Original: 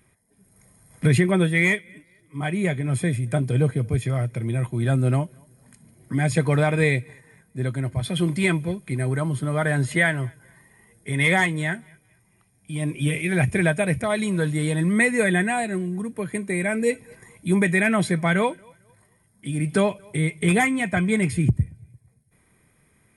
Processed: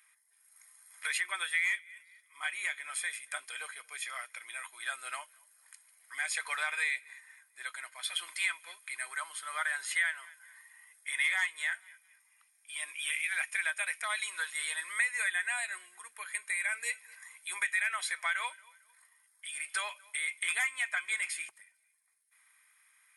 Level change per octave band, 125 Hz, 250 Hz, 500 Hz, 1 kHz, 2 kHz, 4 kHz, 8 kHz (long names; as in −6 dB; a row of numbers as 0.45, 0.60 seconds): below −40 dB, below −40 dB, −30.0 dB, −12.0 dB, −6.0 dB, −3.5 dB, −3.0 dB